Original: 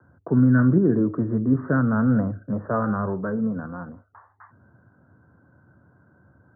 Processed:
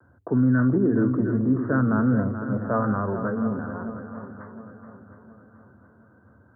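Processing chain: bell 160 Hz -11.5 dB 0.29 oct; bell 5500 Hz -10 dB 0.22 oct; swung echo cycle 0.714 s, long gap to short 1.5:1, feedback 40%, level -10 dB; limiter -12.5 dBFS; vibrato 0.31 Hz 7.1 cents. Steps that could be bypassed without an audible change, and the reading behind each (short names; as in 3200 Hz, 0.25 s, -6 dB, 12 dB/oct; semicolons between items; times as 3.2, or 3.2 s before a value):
bell 5500 Hz: input band ends at 1600 Hz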